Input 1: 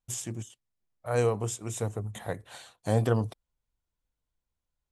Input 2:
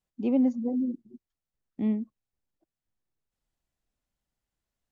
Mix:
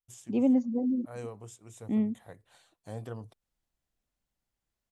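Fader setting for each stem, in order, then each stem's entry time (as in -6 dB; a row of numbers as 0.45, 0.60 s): -15.0, -0.5 dB; 0.00, 0.10 s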